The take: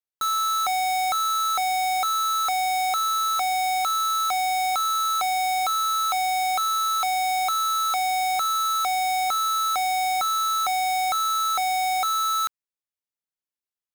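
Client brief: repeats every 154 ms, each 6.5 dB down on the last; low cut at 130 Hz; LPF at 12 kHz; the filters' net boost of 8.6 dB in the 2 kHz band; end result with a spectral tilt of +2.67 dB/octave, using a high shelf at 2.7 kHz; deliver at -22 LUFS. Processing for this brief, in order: high-pass 130 Hz; low-pass 12 kHz; peaking EQ 2 kHz +5.5 dB; treble shelf 2.7 kHz +9 dB; feedback delay 154 ms, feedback 47%, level -6.5 dB; trim -5 dB

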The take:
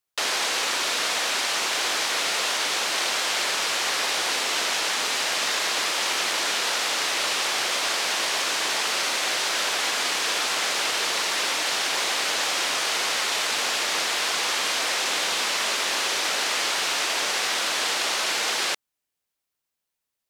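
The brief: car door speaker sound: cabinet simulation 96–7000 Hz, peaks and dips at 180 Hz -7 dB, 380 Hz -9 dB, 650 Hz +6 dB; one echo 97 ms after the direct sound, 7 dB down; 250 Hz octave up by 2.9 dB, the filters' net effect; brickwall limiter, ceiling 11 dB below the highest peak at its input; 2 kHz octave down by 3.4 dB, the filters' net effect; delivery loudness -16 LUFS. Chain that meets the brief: peaking EQ 250 Hz +8 dB; peaking EQ 2 kHz -4.5 dB; peak limiter -22.5 dBFS; cabinet simulation 96–7000 Hz, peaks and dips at 180 Hz -7 dB, 380 Hz -9 dB, 650 Hz +6 dB; delay 97 ms -7 dB; trim +13.5 dB

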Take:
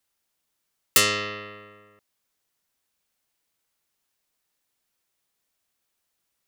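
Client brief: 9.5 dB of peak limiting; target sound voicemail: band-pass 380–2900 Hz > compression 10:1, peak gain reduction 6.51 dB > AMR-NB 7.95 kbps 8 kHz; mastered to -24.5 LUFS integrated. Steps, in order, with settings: peak limiter -13.5 dBFS; band-pass 380–2900 Hz; compression 10:1, threshold -30 dBFS; trim +12.5 dB; AMR-NB 7.95 kbps 8 kHz

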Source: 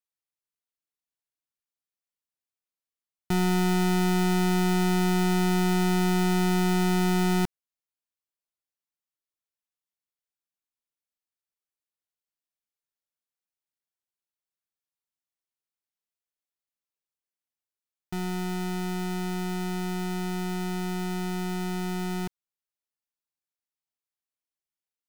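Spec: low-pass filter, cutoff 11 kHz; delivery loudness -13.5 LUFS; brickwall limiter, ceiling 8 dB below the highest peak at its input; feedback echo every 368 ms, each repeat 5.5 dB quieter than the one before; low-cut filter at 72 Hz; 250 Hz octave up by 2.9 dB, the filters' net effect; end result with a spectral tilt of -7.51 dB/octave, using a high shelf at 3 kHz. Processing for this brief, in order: high-pass 72 Hz; low-pass 11 kHz; peaking EQ 250 Hz +5.5 dB; treble shelf 3 kHz +5.5 dB; peak limiter -20.5 dBFS; feedback delay 368 ms, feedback 53%, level -5.5 dB; trim +11.5 dB

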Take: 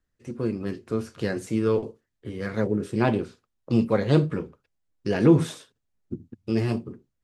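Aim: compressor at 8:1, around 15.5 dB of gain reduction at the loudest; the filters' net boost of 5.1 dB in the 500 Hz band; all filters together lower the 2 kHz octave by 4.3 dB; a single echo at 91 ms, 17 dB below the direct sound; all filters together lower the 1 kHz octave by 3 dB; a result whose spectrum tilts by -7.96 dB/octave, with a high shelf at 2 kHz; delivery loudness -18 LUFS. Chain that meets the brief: peaking EQ 500 Hz +7.5 dB; peaking EQ 1 kHz -7 dB; treble shelf 2 kHz +4 dB; peaking EQ 2 kHz -6 dB; compression 8:1, threshold -25 dBFS; delay 91 ms -17 dB; trim +14 dB

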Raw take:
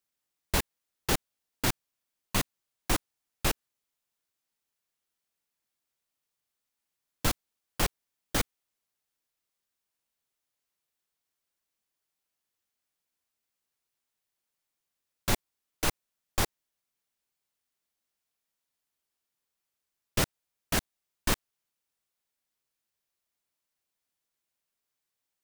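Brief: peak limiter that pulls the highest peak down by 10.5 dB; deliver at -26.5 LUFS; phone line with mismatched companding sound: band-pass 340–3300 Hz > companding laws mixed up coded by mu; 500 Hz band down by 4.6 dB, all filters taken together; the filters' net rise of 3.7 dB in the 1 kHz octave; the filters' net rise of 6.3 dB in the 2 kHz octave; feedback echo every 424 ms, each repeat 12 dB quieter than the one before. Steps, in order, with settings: peaking EQ 500 Hz -6.5 dB; peaking EQ 1 kHz +4.5 dB; peaking EQ 2 kHz +7.5 dB; peak limiter -19.5 dBFS; band-pass 340–3300 Hz; feedback delay 424 ms, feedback 25%, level -12 dB; companding laws mixed up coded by mu; trim +12 dB

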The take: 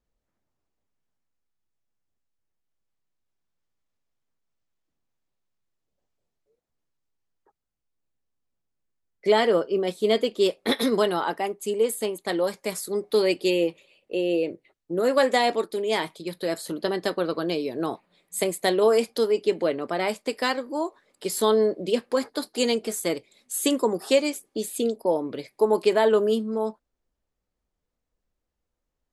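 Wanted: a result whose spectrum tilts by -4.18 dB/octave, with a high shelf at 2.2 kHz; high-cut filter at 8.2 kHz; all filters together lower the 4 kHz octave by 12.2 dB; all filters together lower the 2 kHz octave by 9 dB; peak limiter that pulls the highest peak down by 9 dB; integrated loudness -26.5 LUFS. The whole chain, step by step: low-pass 8.2 kHz; peaking EQ 2 kHz -5.5 dB; treble shelf 2.2 kHz -7.5 dB; peaking EQ 4 kHz -6.5 dB; trim +3 dB; peak limiter -16 dBFS

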